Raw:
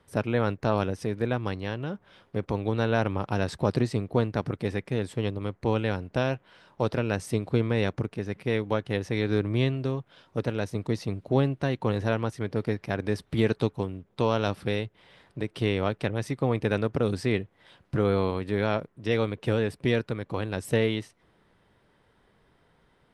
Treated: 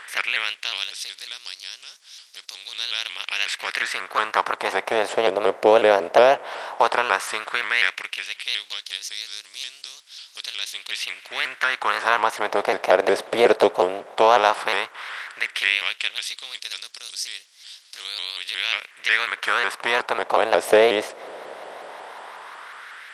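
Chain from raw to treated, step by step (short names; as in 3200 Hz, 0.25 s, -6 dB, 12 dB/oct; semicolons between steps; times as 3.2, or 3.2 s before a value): per-bin compression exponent 0.6; LFO high-pass sine 0.13 Hz 570–5200 Hz; shaped vibrato saw up 5.5 Hz, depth 160 cents; gain +6.5 dB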